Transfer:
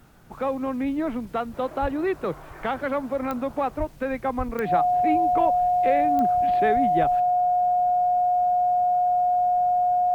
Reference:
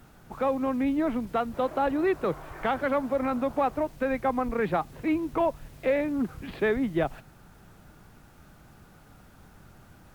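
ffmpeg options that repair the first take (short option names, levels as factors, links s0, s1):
-filter_complex "[0:a]adeclick=t=4,bandreject=f=720:w=30,asplit=3[s0][s1][s2];[s0]afade=t=out:st=1.81:d=0.02[s3];[s1]highpass=f=140:w=0.5412,highpass=f=140:w=1.3066,afade=t=in:st=1.81:d=0.02,afade=t=out:st=1.93:d=0.02[s4];[s2]afade=t=in:st=1.93:d=0.02[s5];[s3][s4][s5]amix=inputs=3:normalize=0,asplit=3[s6][s7][s8];[s6]afade=t=out:st=3.78:d=0.02[s9];[s7]highpass=f=140:w=0.5412,highpass=f=140:w=1.3066,afade=t=in:st=3.78:d=0.02,afade=t=out:st=3.9:d=0.02[s10];[s8]afade=t=in:st=3.9:d=0.02[s11];[s9][s10][s11]amix=inputs=3:normalize=0,asplit=3[s12][s13][s14];[s12]afade=t=out:st=4.37:d=0.02[s15];[s13]highpass=f=140:w=0.5412,highpass=f=140:w=1.3066,afade=t=in:st=4.37:d=0.02,afade=t=out:st=4.49:d=0.02[s16];[s14]afade=t=in:st=4.49:d=0.02[s17];[s15][s16][s17]amix=inputs=3:normalize=0"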